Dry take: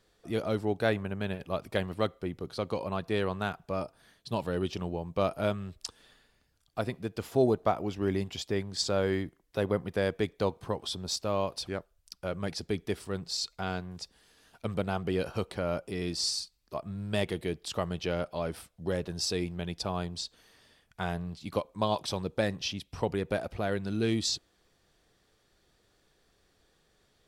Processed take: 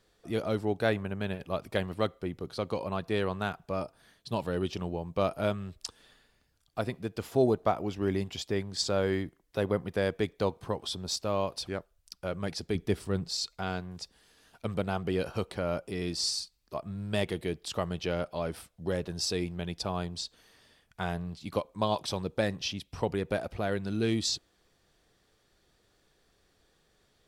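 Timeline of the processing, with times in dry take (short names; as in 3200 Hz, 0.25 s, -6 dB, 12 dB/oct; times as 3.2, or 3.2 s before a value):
12.75–13.29 low shelf 340 Hz +7 dB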